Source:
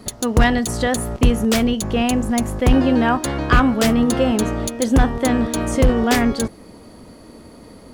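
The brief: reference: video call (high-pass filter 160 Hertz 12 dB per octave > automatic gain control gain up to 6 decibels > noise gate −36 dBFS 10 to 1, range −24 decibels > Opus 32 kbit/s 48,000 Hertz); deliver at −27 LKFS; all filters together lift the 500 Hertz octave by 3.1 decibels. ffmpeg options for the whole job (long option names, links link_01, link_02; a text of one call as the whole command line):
ffmpeg -i in.wav -af "highpass=160,equalizer=frequency=500:width_type=o:gain=3.5,dynaudnorm=maxgain=6dB,agate=range=-24dB:threshold=-36dB:ratio=10,volume=-9dB" -ar 48000 -c:a libopus -b:a 32k out.opus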